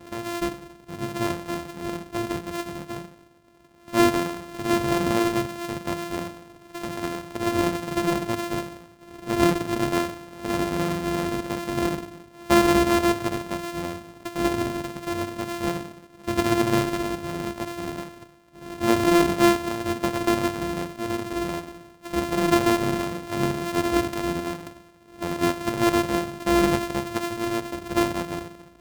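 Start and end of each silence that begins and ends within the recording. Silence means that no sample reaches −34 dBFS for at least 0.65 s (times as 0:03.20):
0:03.05–0:03.88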